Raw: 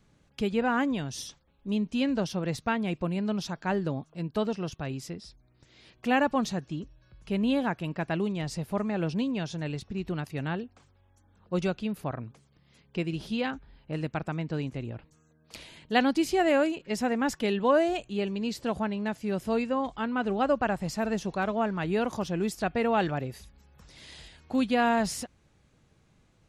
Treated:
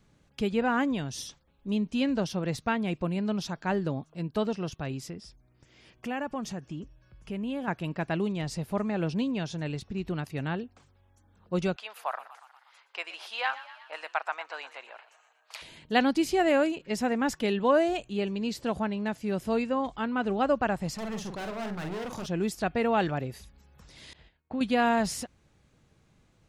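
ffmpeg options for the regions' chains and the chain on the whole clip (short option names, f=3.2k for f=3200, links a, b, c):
-filter_complex "[0:a]asettb=1/sr,asplit=3[a][b][c];[a]atrim=end=5.104[d];[b]atrim=start=5.1:end=7.68,asetpts=PTS-STARTPTS,afade=t=in:d=0.004:c=qsin,afade=t=out:st=2.576:d=0.004:c=qsin,equalizer=f=4k:t=o:w=0.21:g=-11,acompressor=threshold=-35dB:ratio=2:attack=3.2:release=140:knee=1:detection=peak[e];[c]atrim=start=7.676[f];[d][e]acrossfade=d=0.004:c1=hsin:c2=qsin[g];[g][f]acrossfade=d=0.004:c1=qsin:c2=hsin,asettb=1/sr,asplit=3[h][i][j];[h]atrim=end=11.764[k];[i]atrim=start=11.76:end=15.62,asetpts=PTS-STARTPTS,afade=t=in:d=0.004:c=qsin,afade=t=out:st=3.856:d=0.004:c=qsin,highpass=f=720:w=0.5412,highpass=f=720:w=1.3066,equalizer=f=1.1k:w=0.51:g=7.5,asplit=7[l][m][n][o][p][q][r];[m]adelay=120,afreqshift=40,volume=-15.5dB[s];[n]adelay=240,afreqshift=80,volume=-19.7dB[t];[o]adelay=360,afreqshift=120,volume=-23.8dB[u];[p]adelay=480,afreqshift=160,volume=-28dB[v];[q]adelay=600,afreqshift=200,volume=-32.1dB[w];[r]adelay=720,afreqshift=240,volume=-36.3dB[x];[l][s][t][u][v][w][x]amix=inputs=7:normalize=0,atrim=end_sample=170226[y];[j]atrim=start=15.616[z];[k][y]acrossfade=d=0.004:c1=hsin:c2=qsin[aa];[aa][z]acrossfade=d=0.004:c1=qsin:c2=hsin,asettb=1/sr,asplit=3[ab][ac][ad];[ab]atrim=end=20.944[ae];[ac]atrim=start=20.94:end=22.26,asetpts=PTS-STARTPTS,afade=t=in:d=0.004:c=qsin,afade=t=out:st=1.316:d=0.004:c=qsin,volume=34dB,asoftclip=hard,volume=-34dB,asplit=2[af][ag];[ag]adelay=45,volume=-6dB[ah];[af][ah]amix=inputs=2:normalize=0,atrim=end_sample=58212[ai];[ad]atrim=start=22.256[aj];[ae][ai]acrossfade=d=0.004:c1=hsin:c2=qsin[ak];[ak][aj]acrossfade=d=0.004:c1=qsin:c2=hsin,asettb=1/sr,asplit=3[al][am][an];[al]atrim=end=24.134[ao];[am]atrim=start=24.13:end=24.61,asetpts=PTS-STARTPTS,afade=t=in:d=0.004:c=qsin,afade=t=out:st=0.476:d=0.004:c=qsin,agate=range=-33dB:threshold=-43dB:ratio=3:release=100:detection=peak,lowpass=2.4k,acompressor=threshold=-32dB:ratio=2:attack=3.2:release=140:knee=1:detection=peak[ap];[an]atrim=start=24.606[aq];[ao][ap]acrossfade=d=0.004:c1=hsin:c2=qsin[ar];[ar][aq]acrossfade=d=0.004:c1=qsin:c2=hsin"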